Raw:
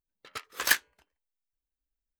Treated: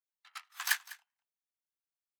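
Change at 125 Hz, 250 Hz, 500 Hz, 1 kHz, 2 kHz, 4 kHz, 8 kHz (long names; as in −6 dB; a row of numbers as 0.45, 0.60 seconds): can't be measured, below −40 dB, below −20 dB, −6.5 dB, −6.5 dB, −6.5 dB, −6.5 dB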